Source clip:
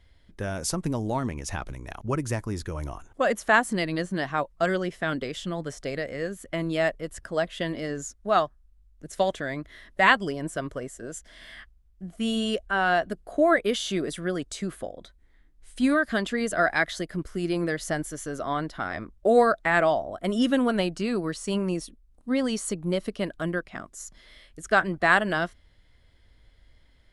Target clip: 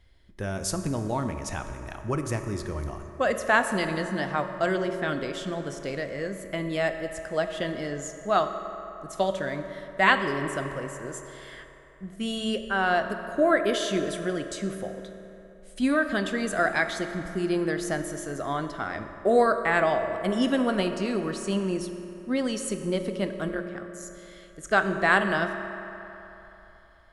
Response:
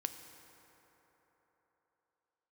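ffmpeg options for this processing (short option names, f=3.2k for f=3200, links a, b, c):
-filter_complex "[0:a]asettb=1/sr,asplit=3[a][b][c];[a]atrim=end=23.484[d];[b]atrim=start=23.48:end=24.03,asetpts=PTS-STARTPTS,afade=t=in:d=0.004:c=qsin,afade=t=out:st=0.546:d=0.004:c=qsin,tremolo=f=140:d=0.889[e];[c]atrim=start=24.026[f];[d][e]acrossfade=d=0.004:c1=hsin:c2=qsin[g];[g][f]acrossfade=d=0.004:c1=qsin:c2=hsin[h];[1:a]atrim=start_sample=2205,asetrate=52920,aresample=44100[i];[h][i]afir=irnorm=-1:irlink=0,volume=1.5dB"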